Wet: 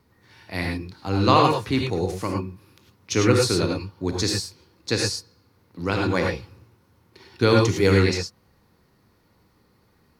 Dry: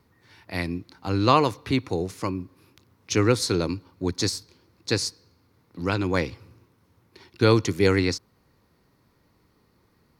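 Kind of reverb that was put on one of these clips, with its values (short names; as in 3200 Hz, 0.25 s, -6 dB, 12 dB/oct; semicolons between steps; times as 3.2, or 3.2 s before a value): non-linear reverb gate 0.13 s rising, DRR 0.5 dB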